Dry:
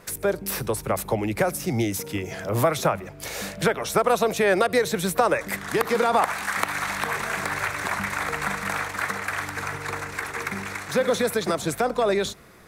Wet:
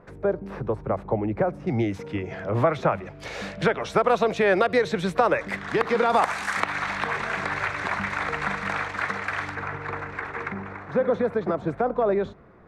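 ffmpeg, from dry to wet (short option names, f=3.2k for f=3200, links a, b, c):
-af "asetnsamples=n=441:p=0,asendcmd='1.67 lowpass f 2200;2.92 lowpass f 3600;6.1 lowpass f 7200;6.6 lowpass f 3900;9.55 lowpass f 2000;10.52 lowpass f 1200',lowpass=1.1k"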